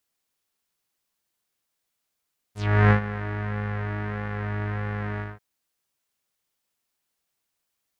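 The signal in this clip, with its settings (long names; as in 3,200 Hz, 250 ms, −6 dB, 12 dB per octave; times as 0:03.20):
subtractive patch with pulse-width modulation G#2, filter lowpass, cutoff 1,600 Hz, Q 3, filter envelope 3 octaves, filter decay 0.12 s, filter sustain 5%, attack 354 ms, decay 0.10 s, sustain −14.5 dB, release 0.19 s, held 2.65 s, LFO 1.6 Hz, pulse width 36%, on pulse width 4%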